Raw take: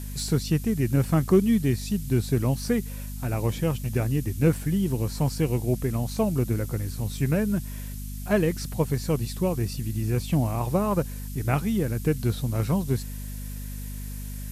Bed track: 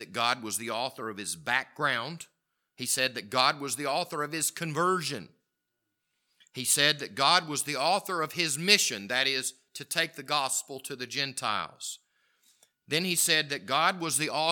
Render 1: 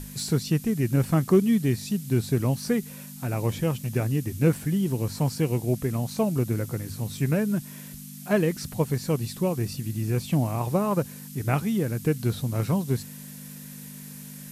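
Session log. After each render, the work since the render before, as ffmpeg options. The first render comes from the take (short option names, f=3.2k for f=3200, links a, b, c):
-af "bandreject=f=50:t=h:w=6,bandreject=f=100:t=h:w=6"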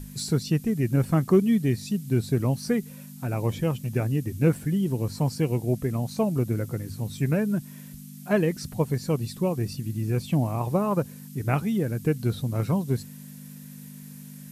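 -af "afftdn=nr=6:nf=-42"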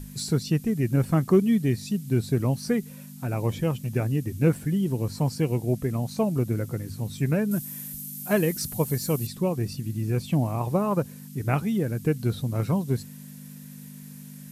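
-filter_complex "[0:a]asettb=1/sr,asplit=3[a][b][c];[a]atrim=end=7.514[d];[b]atrim=start=7.51:end=9.27,asetpts=PTS-STARTPTS,afade=t=in:d=0.004:c=qsin,afade=t=out:st=1.756:d=0.004:c=qsin,aemphasis=mode=production:type=50fm[e];[c]atrim=start=9.266[f];[d][e]acrossfade=d=0.004:c1=hsin:c2=qsin[g];[g][f]acrossfade=d=0.004:c1=qsin:c2=hsin"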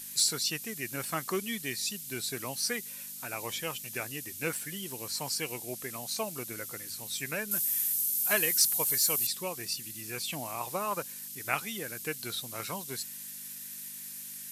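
-af "highpass=f=660:p=1,tiltshelf=f=1.2k:g=-8.5"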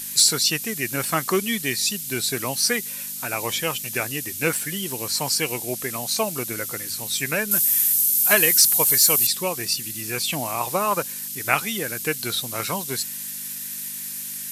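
-af "volume=10.5dB,alimiter=limit=-3dB:level=0:latency=1"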